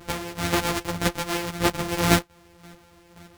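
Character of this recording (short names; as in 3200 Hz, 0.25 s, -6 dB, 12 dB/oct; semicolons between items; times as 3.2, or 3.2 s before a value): a buzz of ramps at a fixed pitch in blocks of 256 samples; chopped level 1.9 Hz, depth 60%, duty 20%; a shimmering, thickened sound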